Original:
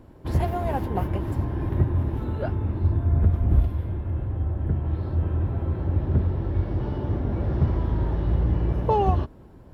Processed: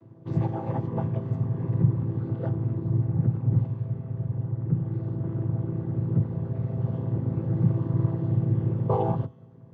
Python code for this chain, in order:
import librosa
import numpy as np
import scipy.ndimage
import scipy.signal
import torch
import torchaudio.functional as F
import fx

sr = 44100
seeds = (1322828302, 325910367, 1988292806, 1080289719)

y = fx.chord_vocoder(x, sr, chord='minor triad', root=45)
y = fx.echo_thinned(y, sr, ms=61, feedback_pct=71, hz=930.0, wet_db=-17.5)
y = y * librosa.db_to_amplitude(3.0)